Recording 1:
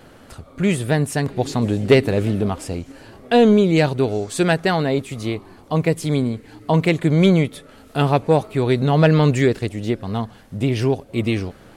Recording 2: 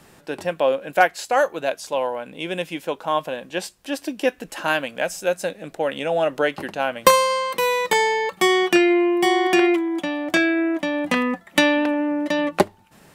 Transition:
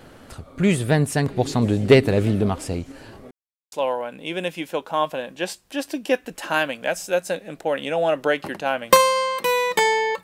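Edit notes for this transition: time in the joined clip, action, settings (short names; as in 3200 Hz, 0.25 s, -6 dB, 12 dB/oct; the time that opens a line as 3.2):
recording 1
3.31–3.72 mute
3.72 switch to recording 2 from 1.86 s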